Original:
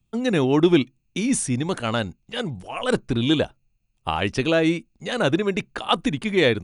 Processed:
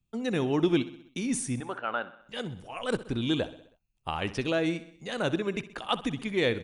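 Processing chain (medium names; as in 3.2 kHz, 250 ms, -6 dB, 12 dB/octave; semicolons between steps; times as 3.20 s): 1.60–2.21 s: cabinet simulation 410–2700 Hz, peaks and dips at 810 Hz +3 dB, 1.4 kHz +8 dB, 2.1 kHz -6 dB; on a send: feedback delay 64 ms, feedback 56%, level -16 dB; on the sum: trim -8 dB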